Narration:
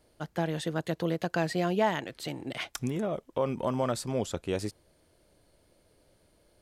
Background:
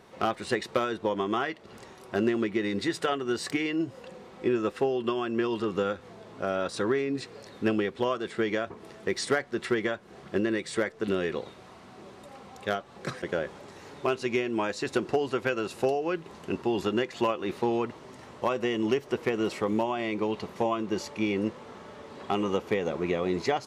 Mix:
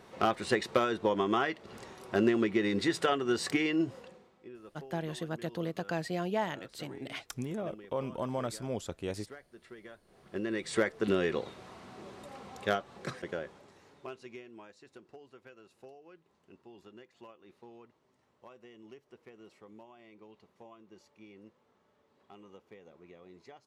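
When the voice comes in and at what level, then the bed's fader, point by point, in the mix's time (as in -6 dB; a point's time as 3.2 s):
4.55 s, -5.5 dB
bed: 3.92 s -0.5 dB
4.47 s -23 dB
9.77 s -23 dB
10.76 s -0.5 dB
12.75 s -0.5 dB
14.89 s -26 dB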